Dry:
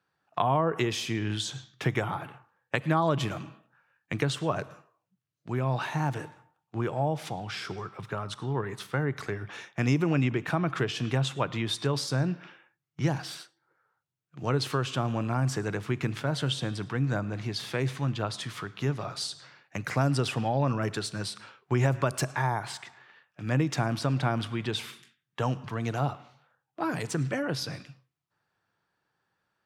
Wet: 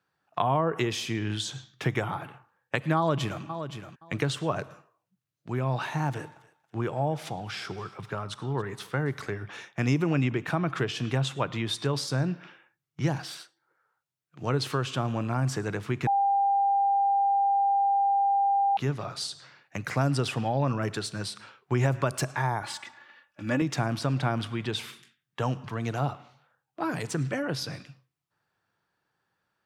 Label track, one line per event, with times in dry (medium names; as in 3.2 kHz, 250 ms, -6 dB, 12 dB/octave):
2.970000	3.430000	echo throw 520 ms, feedback 15%, level -9.5 dB
6.080000	9.290000	thinning echo 278 ms, feedback 32%, high-pass 900 Hz, level -19 dB
13.250000	14.410000	bass shelf 230 Hz -7.5 dB
16.070000	18.770000	bleep 796 Hz -20.5 dBFS
22.620000	23.620000	comb 3.5 ms, depth 73%